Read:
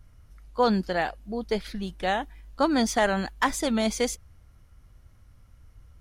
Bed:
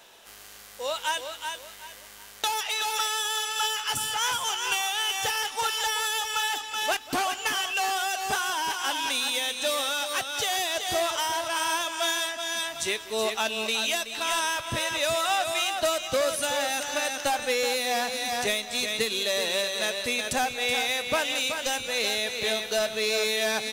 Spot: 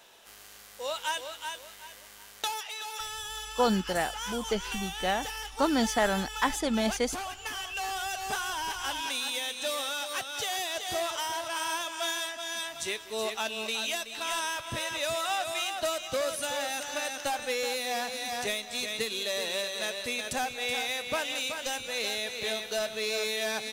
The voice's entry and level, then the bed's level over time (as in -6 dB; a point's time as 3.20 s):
3.00 s, -3.0 dB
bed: 2.41 s -3.5 dB
2.71 s -10 dB
7.37 s -10 dB
8.16 s -5 dB